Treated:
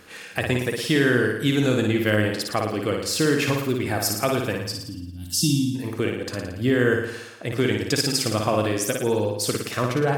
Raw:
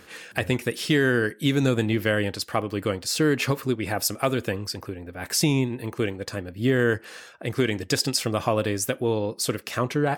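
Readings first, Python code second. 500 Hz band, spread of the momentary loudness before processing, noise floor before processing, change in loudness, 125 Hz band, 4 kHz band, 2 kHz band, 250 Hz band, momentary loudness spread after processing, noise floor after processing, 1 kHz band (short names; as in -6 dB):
+2.0 dB, 9 LU, -49 dBFS, +2.0 dB, +1.5 dB, +2.0 dB, +2.0 dB, +2.0 dB, 8 LU, -39 dBFS, +1.5 dB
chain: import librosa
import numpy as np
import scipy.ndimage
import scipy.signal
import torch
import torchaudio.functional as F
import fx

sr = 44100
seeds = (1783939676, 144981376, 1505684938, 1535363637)

y = fx.spec_box(x, sr, start_s=4.62, length_s=1.13, low_hz=340.0, high_hz=2700.0, gain_db=-26)
y = fx.room_flutter(y, sr, wall_m=9.7, rt60_s=0.8)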